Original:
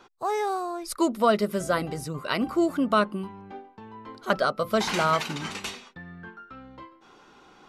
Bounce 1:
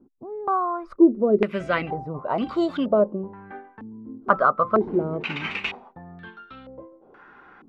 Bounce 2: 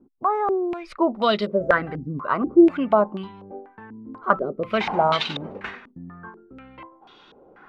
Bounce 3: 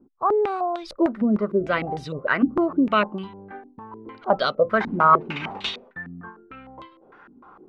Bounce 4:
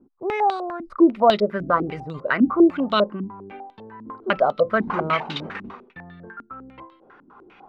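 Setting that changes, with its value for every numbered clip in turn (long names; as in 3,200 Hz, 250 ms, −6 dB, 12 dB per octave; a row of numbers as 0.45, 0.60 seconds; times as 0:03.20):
low-pass on a step sequencer, speed: 2.1, 4.1, 6.6, 10 Hertz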